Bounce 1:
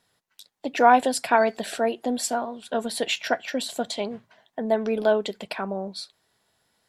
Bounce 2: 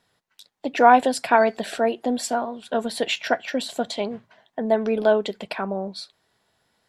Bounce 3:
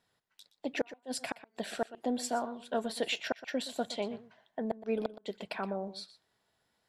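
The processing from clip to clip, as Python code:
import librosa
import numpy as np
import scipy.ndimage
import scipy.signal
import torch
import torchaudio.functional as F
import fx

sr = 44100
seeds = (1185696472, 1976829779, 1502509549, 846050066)

y1 = fx.high_shelf(x, sr, hz=6000.0, db=-7.5)
y1 = y1 * librosa.db_to_amplitude(2.5)
y2 = fx.gate_flip(y1, sr, shuts_db=-10.0, range_db=-41)
y2 = y2 + 10.0 ** (-15.5 / 20.0) * np.pad(y2, (int(121 * sr / 1000.0), 0))[:len(y2)]
y2 = y2 * librosa.db_to_amplitude(-8.5)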